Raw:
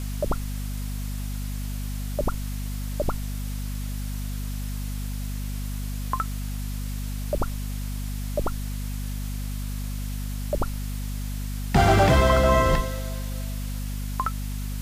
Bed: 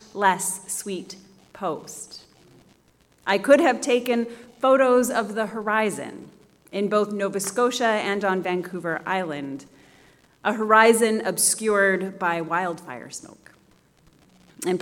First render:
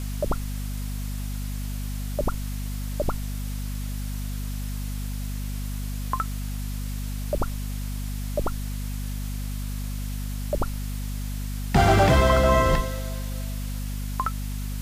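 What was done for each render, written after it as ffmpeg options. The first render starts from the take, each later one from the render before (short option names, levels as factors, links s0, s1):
-af anull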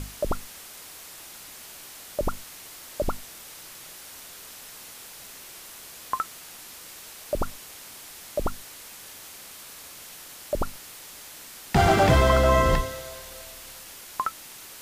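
-af "bandreject=f=50:t=h:w=6,bandreject=f=100:t=h:w=6,bandreject=f=150:t=h:w=6,bandreject=f=200:t=h:w=6,bandreject=f=250:t=h:w=6"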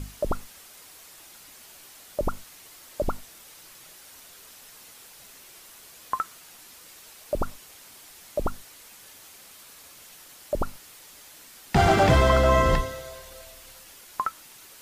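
-af "afftdn=nr=6:nf=-44"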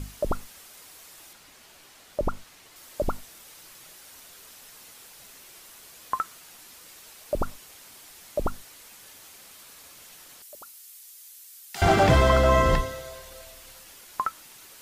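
-filter_complex "[0:a]asettb=1/sr,asplit=3[s0][s1][s2];[s0]atrim=end=1.334[s3];[s1]atrim=start=1.33:end=2.76,asetpts=PTS-STARTPTS,afade=t=in:d=0.004:c=qsin,afade=t=out:st=1.426:d=0.004:c=qsin,highshelf=f=7100:g=-9.5[s4];[s2]atrim=start=2.756[s5];[s3][s4]acrossfade=d=0.004:c1=hsin:c2=qsin[s6];[s6][s5]acrossfade=d=0.004:c1=qsin:c2=hsin,asettb=1/sr,asplit=3[s7][s8][s9];[s7]atrim=end=10.424[s10];[s8]atrim=start=10.42:end=11.82,asetpts=PTS-STARTPTS,afade=t=in:d=0.004:c=qsin,afade=t=out:st=1.396:d=0.004:c=qsin,aderivative[s11];[s9]atrim=start=11.816[s12];[s10][s11]acrossfade=d=0.004:c1=hsin:c2=qsin[s13];[s13][s12]acrossfade=d=0.004:c1=qsin:c2=hsin"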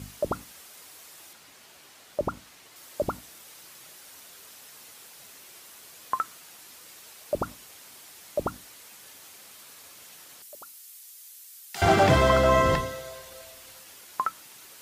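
-af "highpass=82,bandreject=f=60:t=h:w=6,bandreject=f=120:t=h:w=6,bandreject=f=180:t=h:w=6,bandreject=f=240:t=h:w=6,bandreject=f=300:t=h:w=6"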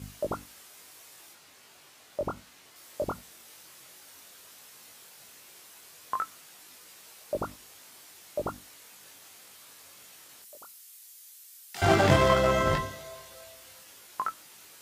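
-filter_complex "[0:a]flanger=delay=19.5:depth=2.2:speed=0.14,asplit=2[s0][s1];[s1]acrusher=bits=2:mix=0:aa=0.5,volume=0.355[s2];[s0][s2]amix=inputs=2:normalize=0"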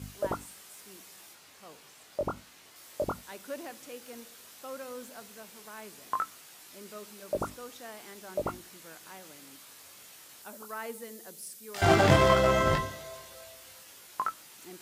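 -filter_complex "[1:a]volume=0.0596[s0];[0:a][s0]amix=inputs=2:normalize=0"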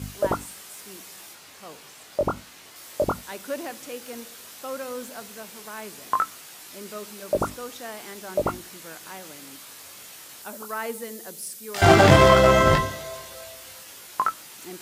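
-af "volume=2.51,alimiter=limit=0.794:level=0:latency=1"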